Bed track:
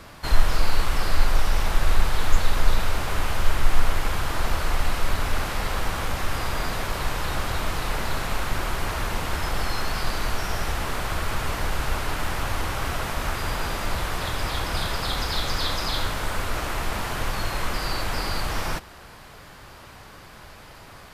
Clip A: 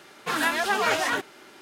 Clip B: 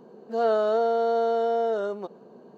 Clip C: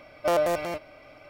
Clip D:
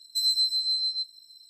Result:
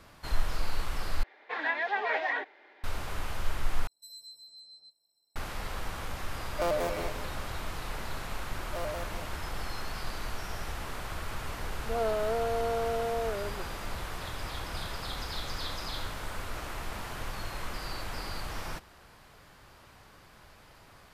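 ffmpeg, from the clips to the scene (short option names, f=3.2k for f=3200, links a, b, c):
-filter_complex "[3:a]asplit=2[a][b];[0:a]volume=-10.5dB[c];[1:a]highpass=f=350:w=0.5412,highpass=f=350:w=1.3066,equalizer=f=370:t=q:w=4:g=-5,equalizer=f=780:t=q:w=4:g=3,equalizer=f=1.3k:t=q:w=4:g=-10,equalizer=f=1.9k:t=q:w=4:g=7,equalizer=f=2.9k:t=q:w=4:g=-8,lowpass=f=3.3k:w=0.5412,lowpass=f=3.3k:w=1.3066[d];[4:a]firequalizer=gain_entry='entry(310,0);entry(520,10);entry(1200,2);entry(1800,-6);entry(3100,-15);entry(8900,-4)':delay=0.05:min_phase=1[e];[a]asplit=5[f][g][h][i][j];[g]adelay=164,afreqshift=-91,volume=-9dB[k];[h]adelay=328,afreqshift=-182,volume=-19.2dB[l];[i]adelay=492,afreqshift=-273,volume=-29.3dB[m];[j]adelay=656,afreqshift=-364,volume=-39.5dB[n];[f][k][l][m][n]amix=inputs=5:normalize=0[o];[c]asplit=3[p][q][r];[p]atrim=end=1.234[s];[d]atrim=end=1.61,asetpts=PTS-STARTPTS,volume=-6dB[t];[q]atrim=start=2.836:end=3.874[u];[e]atrim=end=1.49,asetpts=PTS-STARTPTS,volume=-11.5dB[v];[r]atrim=start=5.356[w];[o]atrim=end=1.29,asetpts=PTS-STARTPTS,volume=-6.5dB,afade=t=in:d=0.004:c=hsin,afade=t=out:st=1.286:d=0.004:c=hsin,adelay=279594S[x];[b]atrim=end=1.29,asetpts=PTS-STARTPTS,volume=-14.5dB,afade=t=in:d=0.004:c=hsin,afade=t=out:st=1.286:d=0.004:c=hsin,adelay=8480[y];[2:a]atrim=end=2.57,asetpts=PTS-STARTPTS,volume=-7.5dB,afade=t=in:d=0.004:c=hsin,afade=t=out:st=2.566:d=0.004:c=hsin,adelay=11560[z];[s][t]acrossfade=d=0.004:c1=hsin:c2=hsin[aa];[aa][u]acrossfade=d=0.004:c1=hsin:c2=hsin[ab];[ab][v]acrossfade=d=0.004:c1=hsin:c2=hsin[ac];[ac][w]acrossfade=d=0.004:c1=hsin:c2=hsin[ad];[ad][x][y][z]amix=inputs=4:normalize=0"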